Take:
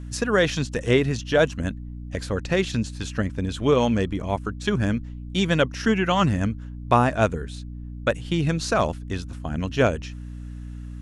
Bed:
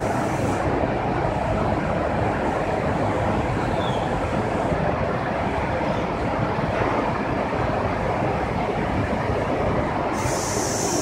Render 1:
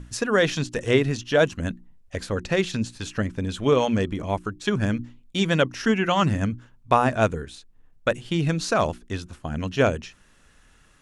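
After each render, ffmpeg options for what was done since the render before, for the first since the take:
-af "bandreject=f=60:t=h:w=6,bandreject=f=120:t=h:w=6,bandreject=f=180:t=h:w=6,bandreject=f=240:t=h:w=6,bandreject=f=300:t=h:w=6,bandreject=f=360:t=h:w=6"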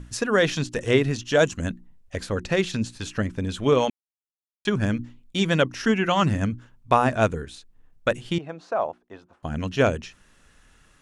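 -filter_complex "[0:a]asettb=1/sr,asplit=3[a][b][c];[a]atrim=end=1.254[d];[b]atrim=start=1.25:end=1.66,asetpts=PTS-STARTPTS,afade=t=in:d=0.004:c=qsin,afade=t=out:st=0.406:d=0.004:c=qsin,equalizer=f=7.1k:t=o:w=0.5:g=10[e];[c]atrim=start=1.656[f];[d][e]acrossfade=d=0.004:c1=hsin:c2=qsin[g];[g][f]acrossfade=d=0.004:c1=qsin:c2=hsin,asettb=1/sr,asplit=3[h][i][j];[h]atrim=end=8.384[k];[i]atrim=start=8.38:end=9.43,asetpts=PTS-STARTPTS,afade=t=in:d=0.004:c=qsin,afade=t=out:st=1.046:d=0.004:c=qsin,bandpass=f=740:t=q:w=1.9[l];[j]atrim=start=9.426[m];[k][l]acrossfade=d=0.004:c1=hsin:c2=qsin[n];[n][m]acrossfade=d=0.004:c1=qsin:c2=hsin,asplit=3[o][p][q];[o]atrim=end=3.9,asetpts=PTS-STARTPTS,afade=t=out:st=3.896:d=0.004:c=hsin[r];[p]atrim=start=3.9:end=4.65,asetpts=PTS-STARTPTS,volume=0[s];[q]atrim=start=4.65,asetpts=PTS-STARTPTS,afade=t=in:d=0.004:c=hsin[t];[r][s][t]concat=n=3:v=0:a=1"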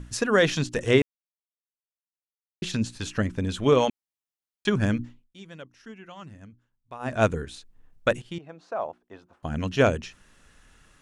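-filter_complex "[0:a]asplit=6[a][b][c][d][e][f];[a]atrim=end=1.02,asetpts=PTS-STARTPTS,afade=t=out:st=1.016:d=0.004:c=hsin[g];[b]atrim=start=1.02:end=2.62,asetpts=PTS-STARTPTS,volume=0[h];[c]atrim=start=2.62:end=5.29,asetpts=PTS-STARTPTS,afade=t=in:d=0.004:c=hsin,afade=t=out:st=2.41:d=0.26:silence=0.0749894[i];[d]atrim=start=5.29:end=6.99,asetpts=PTS-STARTPTS,volume=-22.5dB[j];[e]atrim=start=6.99:end=8.22,asetpts=PTS-STARTPTS,afade=t=in:d=0.26:silence=0.0749894,afade=t=out:st=1.226:d=0.004:c=hsin:silence=0.251189[k];[f]atrim=start=8.22,asetpts=PTS-STARTPTS,afade=t=in:d=1.46:silence=0.251189[l];[g][h][i][j][k][l]concat=n=6:v=0:a=1"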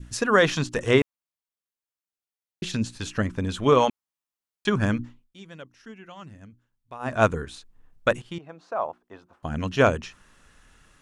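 -af "adynamicequalizer=threshold=0.01:dfrequency=1100:dqfactor=1.6:tfrequency=1100:tqfactor=1.6:attack=5:release=100:ratio=0.375:range=3.5:mode=boostabove:tftype=bell"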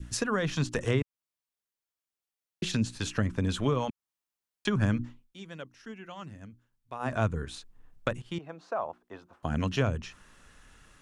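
-filter_complex "[0:a]acrossover=split=180[a][b];[b]acompressor=threshold=-28dB:ratio=6[c];[a][c]amix=inputs=2:normalize=0"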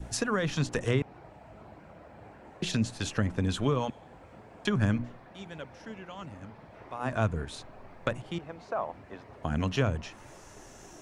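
-filter_complex "[1:a]volume=-28dB[a];[0:a][a]amix=inputs=2:normalize=0"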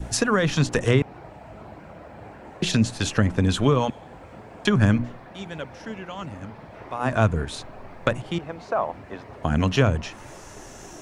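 -af "volume=8dB"

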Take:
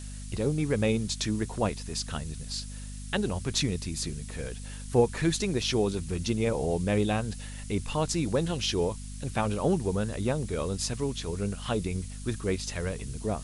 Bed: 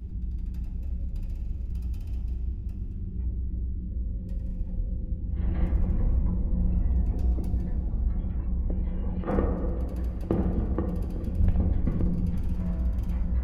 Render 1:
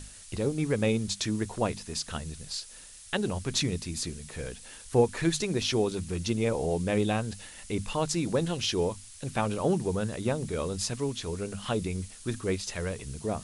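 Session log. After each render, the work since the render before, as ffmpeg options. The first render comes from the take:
-af "bandreject=f=50:t=h:w=6,bandreject=f=100:t=h:w=6,bandreject=f=150:t=h:w=6,bandreject=f=200:t=h:w=6,bandreject=f=250:t=h:w=6"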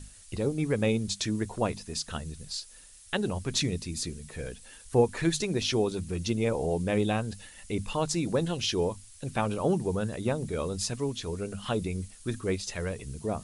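-af "afftdn=nr=6:nf=-48"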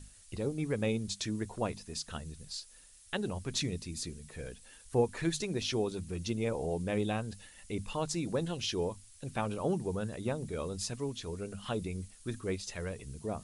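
-af "volume=-5.5dB"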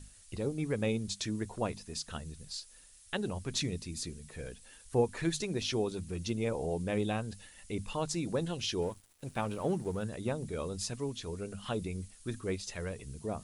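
-filter_complex "[0:a]asettb=1/sr,asplit=3[a][b][c];[a]atrim=end=8.824[d];[b]atrim=start=8.82:end=10.04,asetpts=PTS-STARTPTS,afade=t=in:d=0.004:c=qsin,afade=t=out:st=1.216:d=0.004:c=qsin,aeval=exprs='sgn(val(0))*max(abs(val(0))-0.00178,0)':c=same[e];[c]atrim=start=10.036[f];[d][e]acrossfade=d=0.004:c1=hsin:c2=qsin[g];[g][f]acrossfade=d=0.004:c1=qsin:c2=hsin"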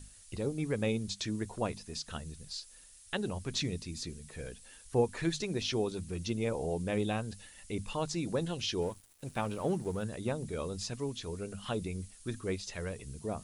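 -filter_complex "[0:a]acrossover=split=6400[a][b];[b]acompressor=threshold=-57dB:ratio=4:attack=1:release=60[c];[a][c]amix=inputs=2:normalize=0,highshelf=f=6.5k:g=5"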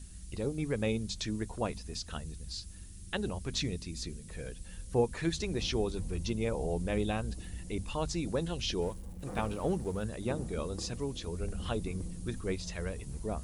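-filter_complex "[1:a]volume=-15dB[a];[0:a][a]amix=inputs=2:normalize=0"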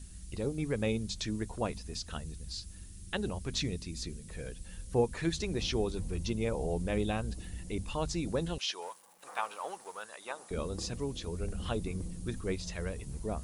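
-filter_complex "[0:a]asettb=1/sr,asplit=3[a][b][c];[a]atrim=end=8.584[d];[b]atrim=start=8.58:end=10.51,asetpts=PTS-STARTPTS,afade=t=in:d=0.004:c=qsin,afade=t=out:st=1.926:d=0.004:c=qsin,highpass=f=980:t=q:w=1.6[e];[c]atrim=start=10.506[f];[d][e]acrossfade=d=0.004:c1=hsin:c2=qsin[g];[g][f]acrossfade=d=0.004:c1=qsin:c2=hsin"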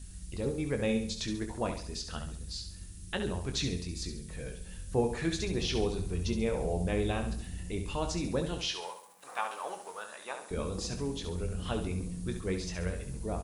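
-filter_complex "[0:a]asplit=2[a][b];[b]adelay=22,volume=-8.5dB[c];[a][c]amix=inputs=2:normalize=0,asplit=2[d][e];[e]aecho=0:1:68|136|204|272|340:0.398|0.163|0.0669|0.0274|0.0112[f];[d][f]amix=inputs=2:normalize=0"

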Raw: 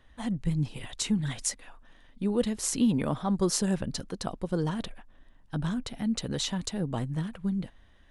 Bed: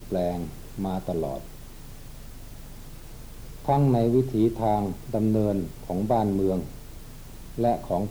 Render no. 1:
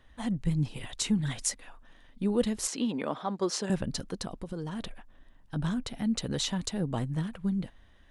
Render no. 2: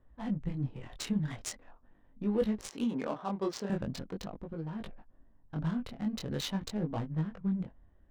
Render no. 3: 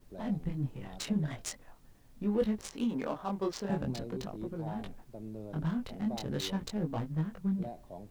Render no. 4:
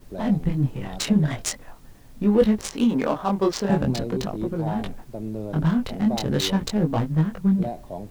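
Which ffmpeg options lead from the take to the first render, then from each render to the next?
-filter_complex "[0:a]asettb=1/sr,asplit=3[a][b][c];[a]atrim=end=2.674[d];[b]atrim=start=2.67:end=3.7,asetpts=PTS-STARTPTS,afade=t=in:d=0.004:c=qsin,afade=t=out:st=1.026:d=0.004:c=qsin,highpass=320,lowpass=5.5k[e];[c]atrim=start=3.696[f];[d][e]acrossfade=d=0.004:c1=hsin:c2=qsin[g];[g][f]acrossfade=d=0.004:c1=qsin:c2=hsin,asplit=3[h][i][j];[h]afade=t=out:st=4.22:d=0.02[k];[i]acompressor=threshold=-31dB:ratio=10:attack=3.2:release=140:knee=1:detection=peak,afade=t=in:st=4.22:d=0.02,afade=t=out:st=5.55:d=0.02[l];[j]afade=t=in:st=5.55:d=0.02[m];[k][l][m]amix=inputs=3:normalize=0"
-af "adynamicsmooth=sensitivity=6:basefreq=900,flanger=delay=18.5:depth=6.8:speed=0.43"
-filter_complex "[1:a]volume=-20.5dB[a];[0:a][a]amix=inputs=2:normalize=0"
-af "volume=12dB"

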